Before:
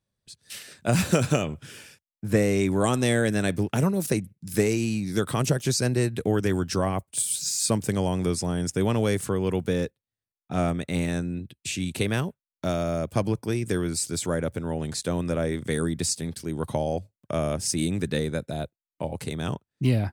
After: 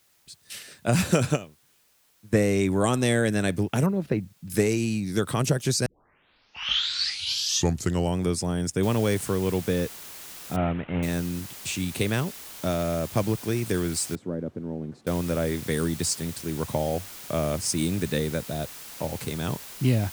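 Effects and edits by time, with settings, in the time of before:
0:01.31–0:02.33: expander for the loud parts 2.5 to 1, over −37 dBFS
0:03.86–0:04.50: high-frequency loss of the air 380 metres
0:05.86: tape start 2.34 s
0:08.83: noise floor change −64 dB −42 dB
0:10.56–0:11.03: variable-slope delta modulation 16 kbit/s
0:14.15–0:15.07: resonant band-pass 260 Hz, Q 1.2

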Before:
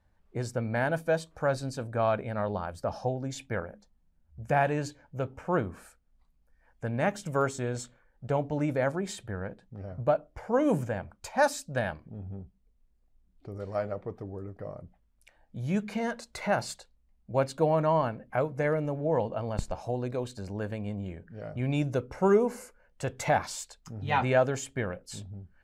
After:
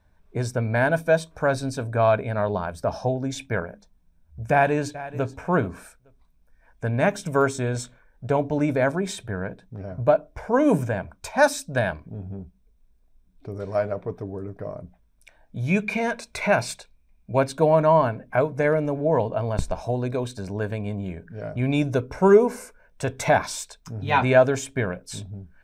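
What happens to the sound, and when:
0:04.51–0:05.35: delay throw 430 ms, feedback 15%, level −16 dB
0:15.66–0:17.38: parametric band 2,400 Hz +12.5 dB 0.21 octaves
whole clip: EQ curve with evenly spaced ripples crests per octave 1.6, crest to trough 6 dB; level +6 dB

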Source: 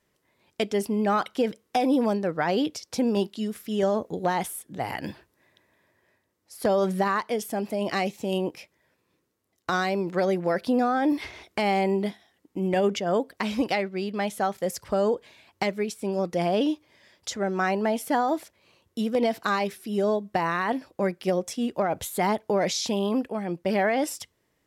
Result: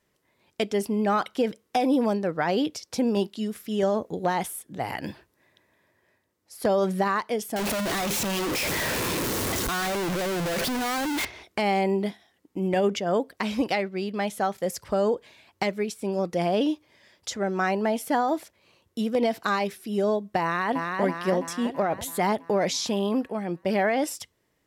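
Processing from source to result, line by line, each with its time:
0:07.56–0:11.25: sign of each sample alone
0:20.42–0:21.01: delay throw 330 ms, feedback 60%, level −3.5 dB

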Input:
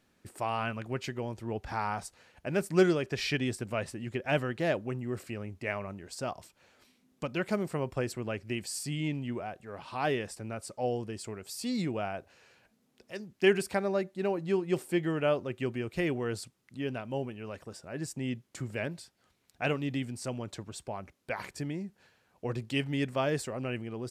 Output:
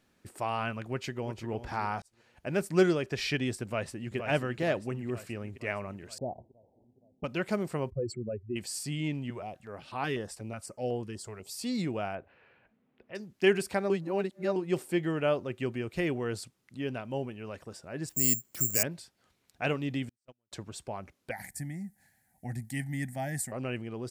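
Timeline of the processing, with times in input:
0:00.87–0:01.51: delay throw 350 ms, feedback 25%, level −11 dB
0:02.02–0:02.48: fade in
0:03.64–0:04.16: delay throw 470 ms, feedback 60%, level −7 dB
0:06.18–0:07.24: Butterworth low-pass 840 Hz 72 dB per octave
0:07.90–0:08.56: expanding power law on the bin magnitudes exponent 3
0:09.30–0:11.58: notch on a step sequencer 8.1 Hz 270–5,700 Hz
0:12.15–0:13.15: low-pass filter 2,700 Hz 24 dB per octave
0:13.90–0:14.56: reverse
0:18.09–0:18.83: bad sample-rate conversion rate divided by 6×, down filtered, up zero stuff
0:20.09–0:20.52: noise gate −31 dBFS, range −48 dB
0:21.31–0:23.52: drawn EQ curve 240 Hz 0 dB, 450 Hz −22 dB, 790 Hz +2 dB, 1,100 Hz −27 dB, 1,900 Hz +4 dB, 2,700 Hz −16 dB, 5,700 Hz −3 dB, 9,700 Hz +12 dB

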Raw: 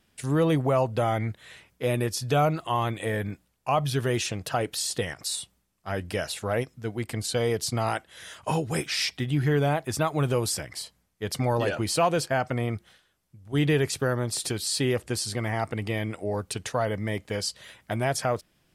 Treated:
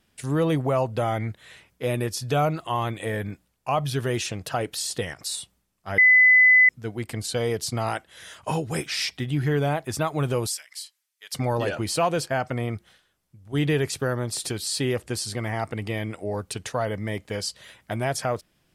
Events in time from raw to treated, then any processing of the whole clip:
0:05.98–0:06.69: beep over 2,010 Hz −11.5 dBFS
0:10.47–0:11.33: Bessel high-pass filter 2,700 Hz

